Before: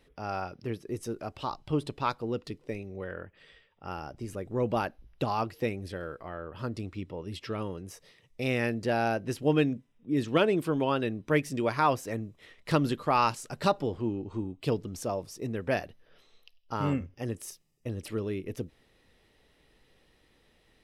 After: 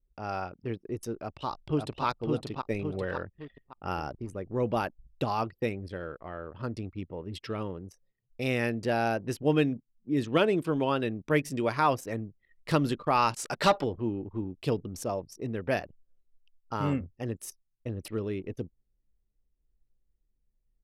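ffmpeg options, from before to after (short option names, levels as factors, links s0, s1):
-filter_complex "[0:a]asplit=2[s0][s1];[s1]afade=t=in:st=1.13:d=0.01,afade=t=out:st=2.05:d=0.01,aecho=0:1:560|1120|1680|2240|2800:0.707946|0.247781|0.0867234|0.0303532|0.0106236[s2];[s0][s2]amix=inputs=2:normalize=0,asettb=1/sr,asplit=3[s3][s4][s5];[s3]atrim=end=2.704[s6];[s4]atrim=start=2.7:end=4.15,asetpts=PTS-STARTPTS,afade=t=in:d=0.004:c=qsin,afade=t=out:st=1.446:d=0.004:c=qsin,acontrast=25[s7];[s5]atrim=start=4.146[s8];[s6][s7]acrossfade=d=0.004:c1=hsin:c2=qsin[s9];[s9][s8]acrossfade=d=0.004:c1=qsin:c2=hsin,asplit=3[s10][s11][s12];[s10]afade=t=out:st=13.38:d=0.02[s13];[s11]asplit=2[s14][s15];[s15]highpass=f=720:p=1,volume=6.31,asoftclip=type=tanh:threshold=0.237[s16];[s14][s16]amix=inputs=2:normalize=0,lowpass=f=4600:p=1,volume=0.501,afade=t=in:st=13.38:d=0.02,afade=t=out:st=13.83:d=0.02[s17];[s12]afade=t=in:st=13.83:d=0.02[s18];[s13][s17][s18]amix=inputs=3:normalize=0,anlmdn=0.1,highshelf=f=11000:g=3.5"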